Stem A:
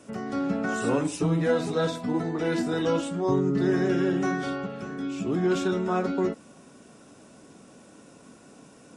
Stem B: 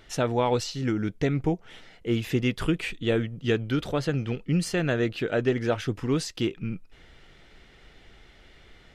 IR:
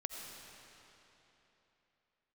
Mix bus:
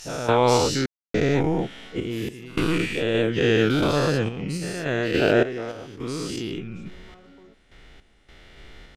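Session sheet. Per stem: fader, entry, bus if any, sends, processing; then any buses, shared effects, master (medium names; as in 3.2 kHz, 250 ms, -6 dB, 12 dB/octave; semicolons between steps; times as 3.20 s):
-18.0 dB, 1.20 s, no send, peak limiter -25 dBFS, peak gain reduction 12.5 dB
+1.0 dB, 0.00 s, no send, every event in the spectrogram widened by 240 ms; random-step tremolo, depth 100%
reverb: none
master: none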